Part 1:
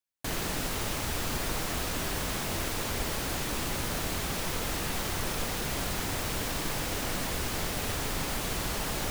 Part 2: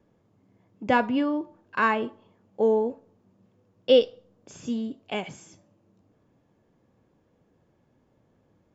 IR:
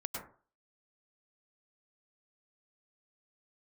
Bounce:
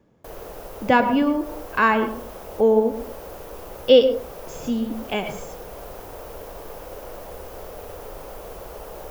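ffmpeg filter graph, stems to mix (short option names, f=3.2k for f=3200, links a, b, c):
-filter_complex "[0:a]equalizer=f=125:t=o:w=1:g=-9,equalizer=f=250:t=o:w=1:g=-9,equalizer=f=500:t=o:w=1:g=11,equalizer=f=2k:t=o:w=1:g=-8,equalizer=f=4k:t=o:w=1:g=-9,equalizer=f=8k:t=o:w=1:g=-10,volume=-7dB,asplit=2[a][b];[b]volume=-7.5dB[c];[1:a]volume=2dB,asplit=3[d][e][f];[e]volume=-6dB[g];[f]apad=whole_len=401546[h];[a][h]sidechaincompress=threshold=-30dB:ratio=8:attack=16:release=167[i];[2:a]atrim=start_sample=2205[j];[c][g]amix=inputs=2:normalize=0[k];[k][j]afir=irnorm=-1:irlink=0[l];[i][d][l]amix=inputs=3:normalize=0"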